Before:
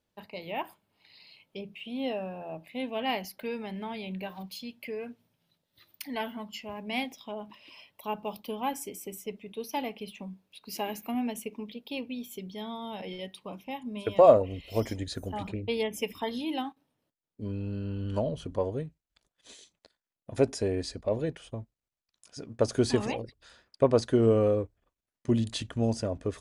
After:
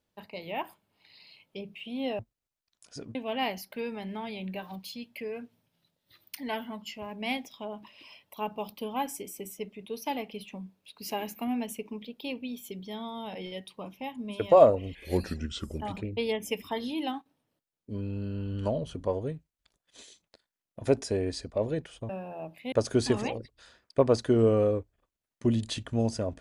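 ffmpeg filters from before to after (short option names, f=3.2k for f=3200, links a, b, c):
-filter_complex "[0:a]asplit=7[a][b][c][d][e][f][g];[a]atrim=end=2.192[h];[b]atrim=start=21.598:end=22.562[i];[c]atrim=start=2.818:end=14.624[j];[d]atrim=start=14.62:end=15.31,asetpts=PTS-STARTPTS,asetrate=35721,aresample=44100[k];[e]atrim=start=15.306:end=21.602[l];[f]atrim=start=2.188:end=2.822[m];[g]atrim=start=22.558[n];[h][i]acrossfade=d=0.004:c1=hsin:c2=hsin[o];[o][j]acrossfade=d=0.004:c1=hsin:c2=hsin[p];[p][k]acrossfade=d=0.004:c1=hsin:c2=hsin[q];[q][l]acrossfade=d=0.004:c1=hsin:c2=hsin[r];[r][m]acrossfade=d=0.004:c1=hsin:c2=hsin[s];[s][n]acrossfade=d=0.004:c1=hsin:c2=hsin"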